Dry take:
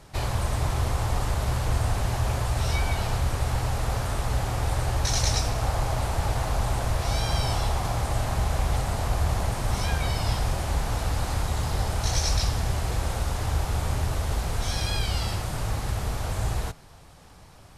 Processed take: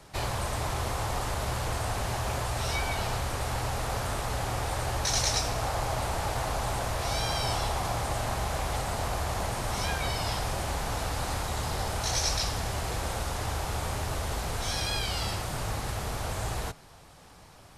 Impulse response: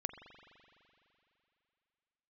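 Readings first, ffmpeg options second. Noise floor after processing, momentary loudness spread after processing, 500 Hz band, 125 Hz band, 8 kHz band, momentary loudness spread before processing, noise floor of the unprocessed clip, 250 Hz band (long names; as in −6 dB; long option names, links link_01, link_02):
−52 dBFS, 5 LU, −0.5 dB, −7.0 dB, 0.0 dB, 3 LU, −49 dBFS, −3.5 dB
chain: -filter_complex "[0:a]lowshelf=frequency=150:gain=-6.5,acrossover=split=330|770|4400[link_01][link_02][link_03][link_04];[link_01]alimiter=level_in=3dB:limit=-24dB:level=0:latency=1:release=61,volume=-3dB[link_05];[link_05][link_02][link_03][link_04]amix=inputs=4:normalize=0"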